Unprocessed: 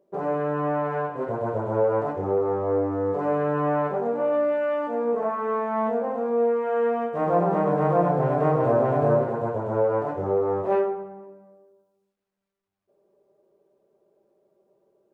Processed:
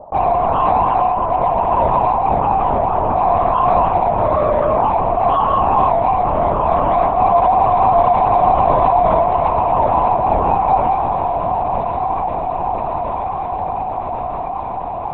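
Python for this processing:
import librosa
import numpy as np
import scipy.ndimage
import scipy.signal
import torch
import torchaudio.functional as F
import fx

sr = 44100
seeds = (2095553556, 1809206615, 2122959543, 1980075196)

p1 = fx.highpass_res(x, sr, hz=770.0, q=4.9)
p2 = fx.high_shelf_res(p1, sr, hz=1500.0, db=-11.0, q=3.0)
p3 = np.clip(p2, -10.0 ** (-20.5 / 20.0), 10.0 ** (-20.5 / 20.0))
p4 = p2 + (p3 * librosa.db_to_amplitude(-8.0))
p5 = fx.air_absorb(p4, sr, metres=73.0)
p6 = p5 + fx.echo_diffused(p5, sr, ms=1212, feedback_pct=63, wet_db=-10.5, dry=0)
p7 = fx.lpc_vocoder(p6, sr, seeds[0], excitation='whisper', order=10)
p8 = fx.env_flatten(p7, sr, amount_pct=50)
y = p8 * librosa.db_to_amplitude(-4.0)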